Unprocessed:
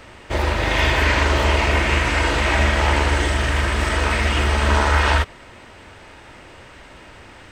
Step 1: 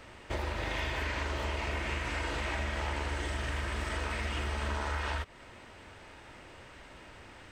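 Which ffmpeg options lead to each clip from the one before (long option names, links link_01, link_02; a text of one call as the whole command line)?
ffmpeg -i in.wav -af "acompressor=threshold=-23dB:ratio=5,volume=-8.5dB" out.wav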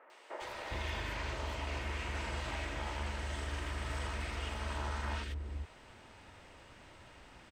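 ffmpeg -i in.wav -filter_complex "[0:a]acrossover=split=400|1800[link_01][link_02][link_03];[link_03]adelay=100[link_04];[link_01]adelay=410[link_05];[link_05][link_02][link_04]amix=inputs=3:normalize=0,volume=-3.5dB" out.wav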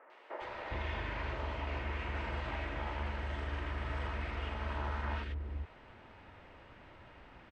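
ffmpeg -i in.wav -af "lowpass=2600,volume=1dB" out.wav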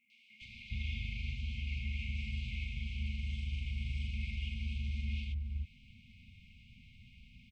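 ffmpeg -i in.wav -af "afftfilt=real='re*(1-between(b*sr/4096,250,2100))':imag='im*(1-between(b*sr/4096,250,2100))':win_size=4096:overlap=0.75,volume=2dB" out.wav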